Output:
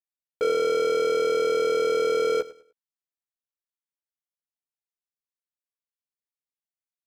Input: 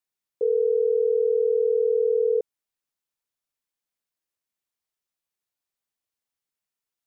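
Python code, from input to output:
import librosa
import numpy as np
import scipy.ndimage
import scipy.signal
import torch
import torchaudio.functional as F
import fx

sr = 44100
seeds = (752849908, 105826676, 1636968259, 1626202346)

y = fx.leveller(x, sr, passes=5)
y = fx.doubler(y, sr, ms=14.0, db=-7)
y = fx.echo_feedback(y, sr, ms=101, feedback_pct=28, wet_db=-17.5)
y = y * librosa.db_to_amplitude(-6.0)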